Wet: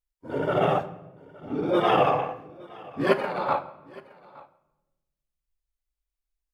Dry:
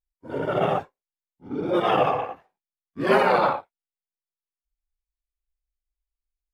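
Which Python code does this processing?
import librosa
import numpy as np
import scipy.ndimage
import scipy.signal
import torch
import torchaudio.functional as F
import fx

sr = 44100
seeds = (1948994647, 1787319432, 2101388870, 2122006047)

y = fx.over_compress(x, sr, threshold_db=-24.0, ratio=-0.5, at=(3.12, 3.58), fade=0.02)
y = y + 10.0 ** (-22.5 / 20.0) * np.pad(y, (int(867 * sr / 1000.0), 0))[:len(y)]
y = fx.room_shoebox(y, sr, seeds[0], volume_m3=510.0, walls='mixed', distance_m=0.33)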